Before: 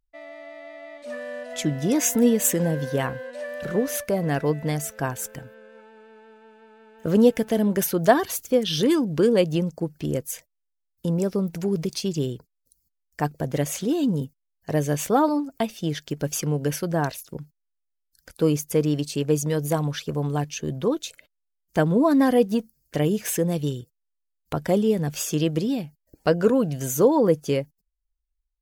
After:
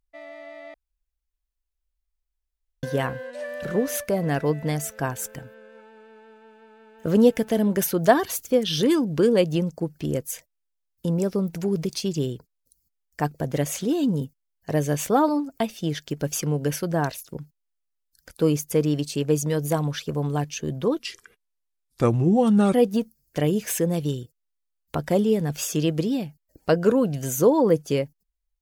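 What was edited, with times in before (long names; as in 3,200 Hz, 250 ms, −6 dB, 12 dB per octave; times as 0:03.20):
0:00.74–0:02.83: fill with room tone
0:20.99–0:22.32: play speed 76%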